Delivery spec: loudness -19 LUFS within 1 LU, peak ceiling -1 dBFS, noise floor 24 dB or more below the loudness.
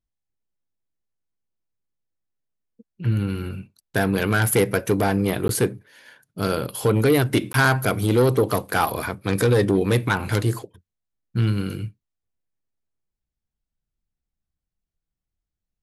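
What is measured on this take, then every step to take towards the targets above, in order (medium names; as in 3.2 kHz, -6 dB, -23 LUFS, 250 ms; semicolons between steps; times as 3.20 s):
dropouts 2; longest dropout 12 ms; loudness -22.0 LUFS; peak level -6.5 dBFS; loudness target -19.0 LUFS
-> interpolate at 5.48/7.53 s, 12 ms; trim +3 dB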